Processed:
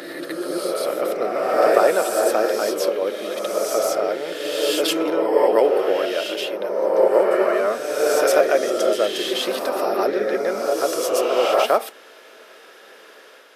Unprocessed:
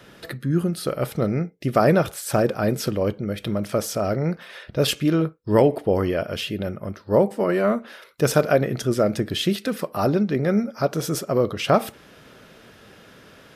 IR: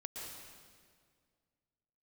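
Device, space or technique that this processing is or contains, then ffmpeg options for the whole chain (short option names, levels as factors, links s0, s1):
ghost voice: -filter_complex "[0:a]areverse[s0];[1:a]atrim=start_sample=2205[s1];[s0][s1]afir=irnorm=-1:irlink=0,areverse,highpass=f=380:w=0.5412,highpass=f=380:w=1.3066,volume=2"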